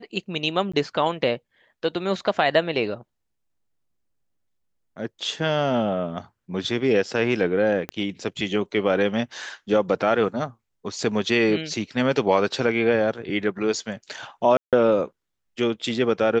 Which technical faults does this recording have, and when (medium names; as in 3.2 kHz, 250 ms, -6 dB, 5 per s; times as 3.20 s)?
0.72–0.73 s: dropout 15 ms
7.89 s: pop -15 dBFS
14.57–14.73 s: dropout 157 ms